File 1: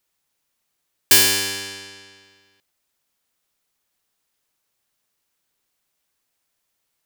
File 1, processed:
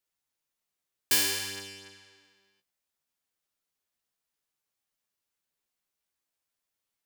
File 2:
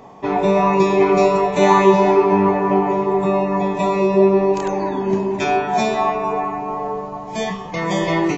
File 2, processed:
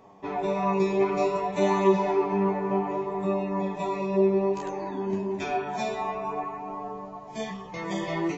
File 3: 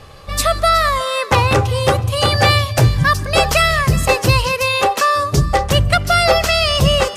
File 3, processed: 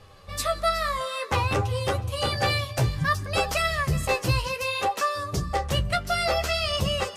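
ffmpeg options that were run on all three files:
ffmpeg -i in.wav -af "flanger=delay=9.8:depth=6:regen=27:speed=0.58:shape=sinusoidal,volume=-7.5dB" out.wav

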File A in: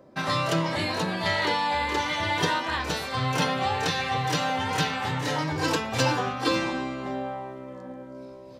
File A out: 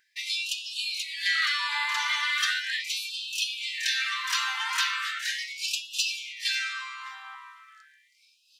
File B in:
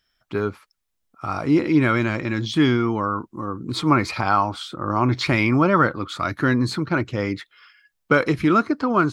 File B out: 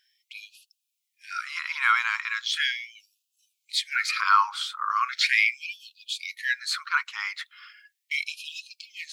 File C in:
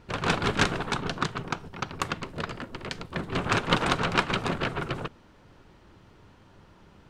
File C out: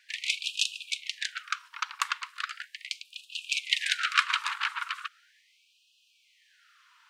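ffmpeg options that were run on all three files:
ffmpeg -i in.wav -af "equalizer=frequency=850:width_type=o:width=0.37:gain=-11.5,afftfilt=real='re*gte(b*sr/1024,800*pow(2500/800,0.5+0.5*sin(2*PI*0.38*pts/sr)))':imag='im*gte(b*sr/1024,800*pow(2500/800,0.5+0.5*sin(2*PI*0.38*pts/sr)))':win_size=1024:overlap=0.75,volume=3dB" out.wav

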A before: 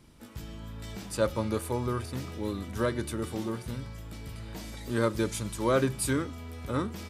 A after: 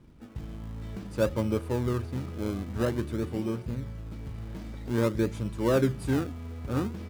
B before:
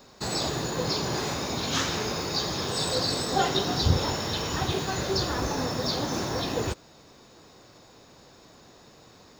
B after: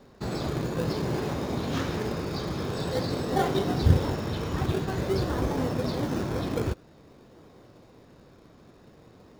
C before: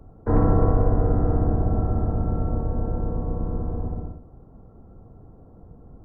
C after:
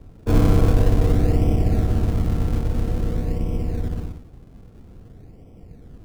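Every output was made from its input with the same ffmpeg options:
ffmpeg -i in.wav -filter_complex "[0:a]lowpass=frequency=1100:poles=1,equalizer=frequency=830:width_type=o:width=0.77:gain=-3,asplit=2[link_01][link_02];[link_02]acrusher=samples=32:mix=1:aa=0.000001:lfo=1:lforange=32:lforate=0.5,volume=-6.5dB[link_03];[link_01][link_03]amix=inputs=2:normalize=0" out.wav

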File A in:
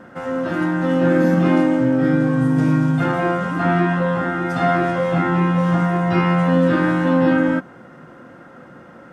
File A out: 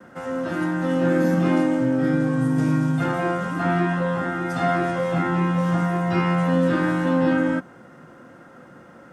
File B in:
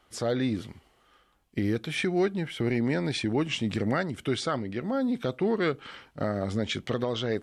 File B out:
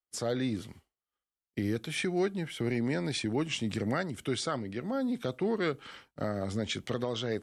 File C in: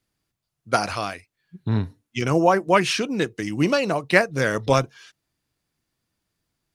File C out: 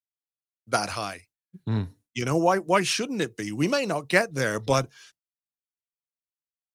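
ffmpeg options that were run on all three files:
ffmpeg -i in.wav -filter_complex "[0:a]agate=range=-33dB:threshold=-44dB:ratio=3:detection=peak,acrossover=split=110|1300|5500[link_01][link_02][link_03][link_04];[link_04]acontrast=74[link_05];[link_01][link_02][link_03][link_05]amix=inputs=4:normalize=0,volume=-4dB" out.wav

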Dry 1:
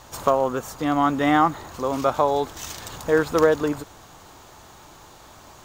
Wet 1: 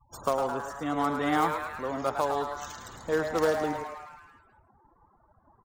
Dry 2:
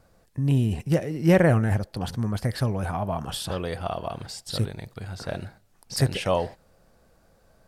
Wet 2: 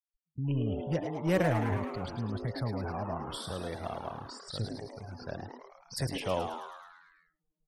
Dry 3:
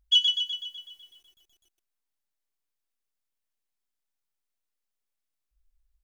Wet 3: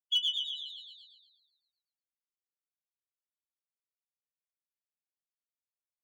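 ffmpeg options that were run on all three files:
ffmpeg -i in.wav -filter_complex "[0:a]acrossover=split=310|3400[link_01][link_02][link_03];[link_01]asoftclip=type=hard:threshold=-20dB[link_04];[link_02]acrusher=bits=3:mode=log:mix=0:aa=0.000001[link_05];[link_04][link_05][link_03]amix=inputs=3:normalize=0,afftfilt=real='re*gte(hypot(re,im),0.0178)':imag='im*gte(hypot(re,im),0.0178)':win_size=1024:overlap=0.75,asplit=9[link_06][link_07][link_08][link_09][link_10][link_11][link_12][link_13][link_14];[link_07]adelay=107,afreqshift=150,volume=-7.5dB[link_15];[link_08]adelay=214,afreqshift=300,volume=-11.9dB[link_16];[link_09]adelay=321,afreqshift=450,volume=-16.4dB[link_17];[link_10]adelay=428,afreqshift=600,volume=-20.8dB[link_18];[link_11]adelay=535,afreqshift=750,volume=-25.2dB[link_19];[link_12]adelay=642,afreqshift=900,volume=-29.7dB[link_20];[link_13]adelay=749,afreqshift=1050,volume=-34.1dB[link_21];[link_14]adelay=856,afreqshift=1200,volume=-38.6dB[link_22];[link_06][link_15][link_16][link_17][link_18][link_19][link_20][link_21][link_22]amix=inputs=9:normalize=0,volume=-8.5dB" out.wav

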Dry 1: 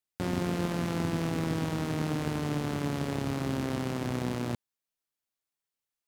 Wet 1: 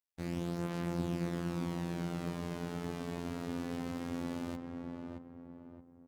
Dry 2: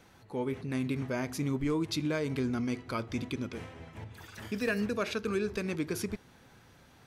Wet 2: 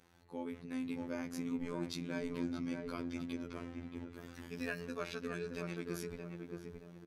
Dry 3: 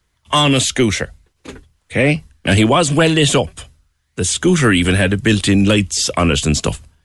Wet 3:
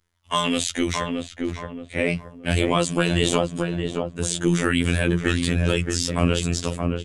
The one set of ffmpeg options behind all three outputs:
ffmpeg -i in.wav -filter_complex "[0:a]asplit=2[link_01][link_02];[link_02]adelay=623,lowpass=frequency=1200:poles=1,volume=-3dB,asplit=2[link_03][link_04];[link_04]adelay=623,lowpass=frequency=1200:poles=1,volume=0.42,asplit=2[link_05][link_06];[link_06]adelay=623,lowpass=frequency=1200:poles=1,volume=0.42,asplit=2[link_07][link_08];[link_08]adelay=623,lowpass=frequency=1200:poles=1,volume=0.42,asplit=2[link_09][link_10];[link_10]adelay=623,lowpass=frequency=1200:poles=1,volume=0.42[link_11];[link_01][link_03][link_05][link_07][link_09][link_11]amix=inputs=6:normalize=0,afftfilt=real='hypot(re,im)*cos(PI*b)':imag='0':win_size=2048:overlap=0.75,volume=-5.5dB" out.wav

